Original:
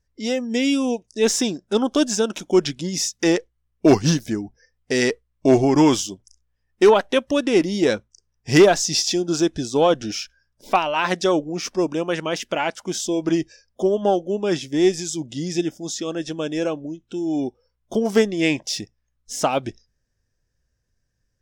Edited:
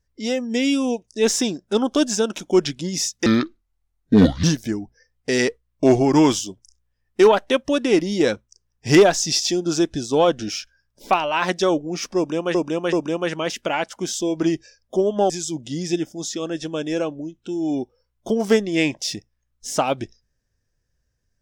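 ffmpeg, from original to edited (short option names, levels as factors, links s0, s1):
-filter_complex "[0:a]asplit=6[s0][s1][s2][s3][s4][s5];[s0]atrim=end=3.264[s6];[s1]atrim=start=3.26:end=4.06,asetpts=PTS-STARTPTS,asetrate=29988,aresample=44100,atrim=end_sample=51882,asetpts=PTS-STARTPTS[s7];[s2]atrim=start=4.056:end=12.172[s8];[s3]atrim=start=11.788:end=12.172[s9];[s4]atrim=start=11.788:end=14.162[s10];[s5]atrim=start=14.948[s11];[s6][s7]acrossfade=d=0.004:c1=hsin:c2=hsin[s12];[s12][s8]acrossfade=d=0.004:c1=hsin:c2=hsin[s13];[s13][s9]acrossfade=d=0.004:c1=hsin:c2=hsin[s14];[s14][s10]acrossfade=d=0.004:c1=hsin:c2=hsin[s15];[s15][s11]acrossfade=d=0.004:c1=hsin:c2=hsin"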